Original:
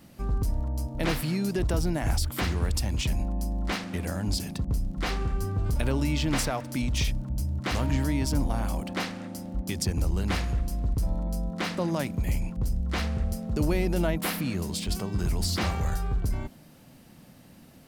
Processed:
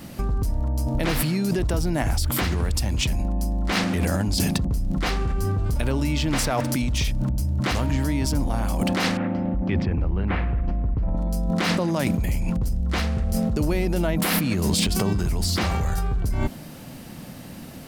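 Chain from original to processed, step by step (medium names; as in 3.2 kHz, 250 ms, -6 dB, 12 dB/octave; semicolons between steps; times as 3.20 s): 9.17–11.17 s: low-pass 2.5 kHz 24 dB/octave; in parallel at +2 dB: compressor with a negative ratio -33 dBFS, ratio -0.5; on the sum: trim +1.5 dB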